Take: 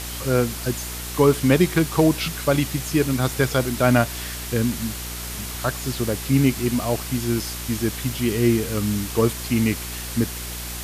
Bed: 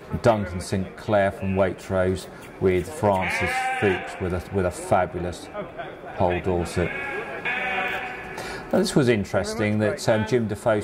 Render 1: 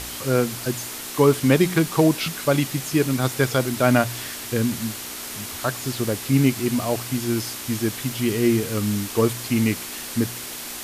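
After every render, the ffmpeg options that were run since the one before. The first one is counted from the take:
-af "bandreject=f=60:t=h:w=4,bandreject=f=120:t=h:w=4,bandreject=f=180:t=h:w=4"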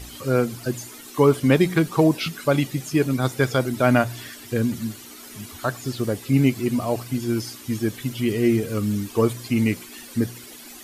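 -af "afftdn=nr=13:nf=-34"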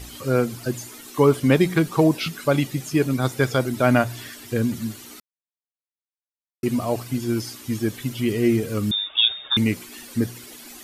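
-filter_complex "[0:a]asettb=1/sr,asplit=3[s0][s1][s2];[s0]atrim=end=8.914[s3];[s1]atrim=start=8.91:end=9.57,asetpts=PTS-STARTPTS,afade=t=in:d=0.004:c=qsin,afade=t=out:st=0.656:d=0.004:c=qsin,lowpass=f=3200:t=q:w=0.5098,lowpass=f=3200:t=q:w=0.6013,lowpass=f=3200:t=q:w=0.9,lowpass=f=3200:t=q:w=2.563,afreqshift=-3800[s4];[s2]atrim=start=9.566[s5];[s3][s4]acrossfade=d=0.004:c1=hsin:c2=qsin[s6];[s6][s5]acrossfade=d=0.004:c1=qsin:c2=hsin,asplit=3[s7][s8][s9];[s7]atrim=end=5.2,asetpts=PTS-STARTPTS,afade=t=out:st=5.196:d=0.004:c=hsin[s10];[s8]atrim=start=5.2:end=6.63,asetpts=PTS-STARTPTS,volume=0[s11];[s9]atrim=start=6.63,asetpts=PTS-STARTPTS,afade=t=in:d=0.004:c=hsin[s12];[s10][s11][s12]concat=n=3:v=0:a=1"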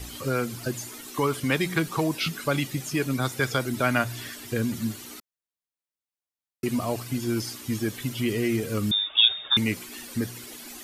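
-filter_complex "[0:a]acrossover=split=550|940[s0][s1][s2];[s0]alimiter=limit=0.106:level=0:latency=1:release=201[s3];[s1]acompressor=threshold=0.0126:ratio=6[s4];[s3][s4][s2]amix=inputs=3:normalize=0"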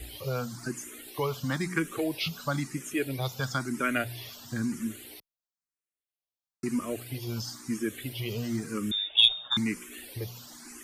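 -filter_complex "[0:a]aeval=exprs='0.531*(cos(1*acos(clip(val(0)/0.531,-1,1)))-cos(1*PI/2))+0.0168*(cos(2*acos(clip(val(0)/0.531,-1,1)))-cos(2*PI/2))+0.0422*(cos(3*acos(clip(val(0)/0.531,-1,1)))-cos(3*PI/2))+0.00299*(cos(5*acos(clip(val(0)/0.531,-1,1)))-cos(5*PI/2))':c=same,asplit=2[s0][s1];[s1]afreqshift=1[s2];[s0][s2]amix=inputs=2:normalize=1"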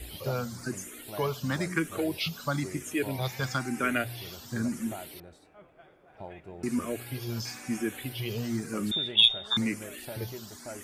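-filter_complex "[1:a]volume=0.0841[s0];[0:a][s0]amix=inputs=2:normalize=0"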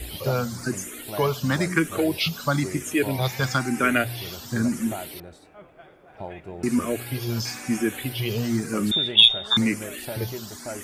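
-af "volume=2.24,alimiter=limit=0.891:level=0:latency=1"

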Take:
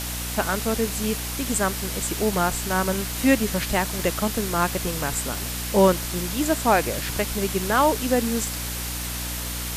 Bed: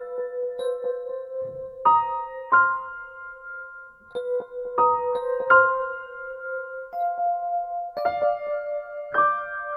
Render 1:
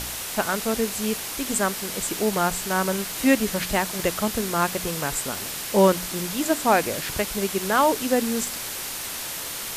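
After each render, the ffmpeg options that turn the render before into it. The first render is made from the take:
-af "bandreject=f=60:t=h:w=4,bandreject=f=120:t=h:w=4,bandreject=f=180:t=h:w=4,bandreject=f=240:t=h:w=4,bandreject=f=300:t=h:w=4"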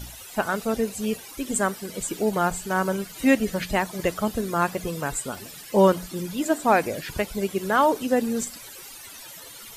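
-af "afftdn=nr=16:nf=-32"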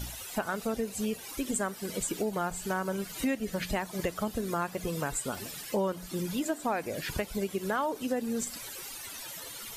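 -af "acompressor=threshold=0.0355:ratio=4"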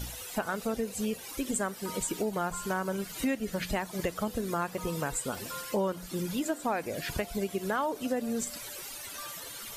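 -filter_complex "[1:a]volume=0.0447[s0];[0:a][s0]amix=inputs=2:normalize=0"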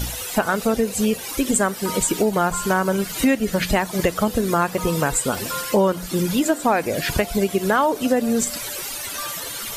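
-af "volume=3.98"

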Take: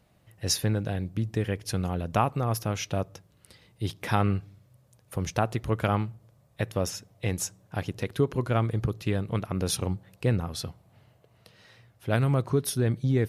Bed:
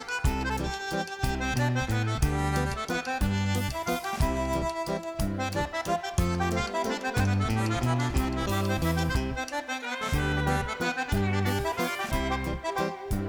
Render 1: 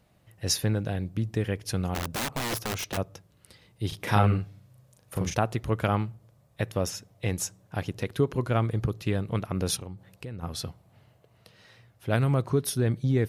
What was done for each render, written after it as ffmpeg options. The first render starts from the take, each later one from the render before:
-filter_complex "[0:a]asplit=3[s0][s1][s2];[s0]afade=t=out:st=1.94:d=0.02[s3];[s1]aeval=exprs='(mod(17.8*val(0)+1,2)-1)/17.8':c=same,afade=t=in:st=1.94:d=0.02,afade=t=out:st=2.96:d=0.02[s4];[s2]afade=t=in:st=2.96:d=0.02[s5];[s3][s4][s5]amix=inputs=3:normalize=0,asettb=1/sr,asplit=3[s6][s7][s8];[s6]atrim=end=3.884[s9];[s7]atrim=start=3.88:end=5.35,asetpts=PTS-STARTPTS,afade=t=in:d=0.004:c=qsin,afade=t=out:st=1.466:d=0.004:c=qsin,asplit=2[s10][s11];[s11]adelay=38,volume=0.794[s12];[s10][s12]amix=inputs=2:normalize=0,atrim=end_sample=64827[s13];[s8]atrim=start=5.346[s14];[s9][s13]acrossfade=d=0.004:c1=hsin:c2=qsin[s15];[s15][s14]acrossfade=d=0.004:c1=qsin:c2=hsin,asplit=3[s16][s17][s18];[s16]afade=t=out:st=9.76:d=0.02[s19];[s17]acompressor=threshold=0.0141:ratio=4:attack=3.2:release=140:knee=1:detection=peak,afade=t=in:st=9.76:d=0.02,afade=t=out:st=10.42:d=0.02[s20];[s18]afade=t=in:st=10.42:d=0.02[s21];[s19][s20][s21]amix=inputs=3:normalize=0"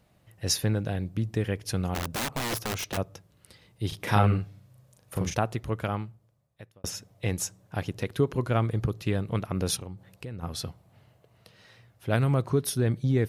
-filter_complex "[0:a]asplit=2[s0][s1];[s0]atrim=end=6.84,asetpts=PTS-STARTPTS,afade=t=out:st=5.22:d=1.62[s2];[s1]atrim=start=6.84,asetpts=PTS-STARTPTS,afade=t=in:d=0.004:c=hsin[s3];[s2][s3]concat=n=2:v=0:a=1"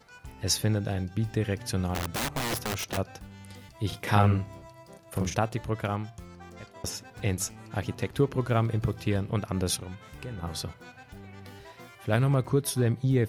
-filter_complex "[1:a]volume=0.106[s0];[0:a][s0]amix=inputs=2:normalize=0"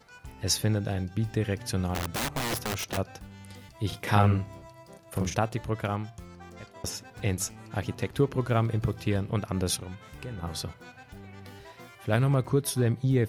-af anull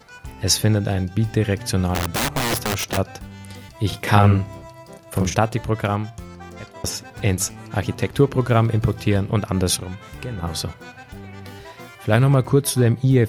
-af "volume=2.66,alimiter=limit=0.708:level=0:latency=1"

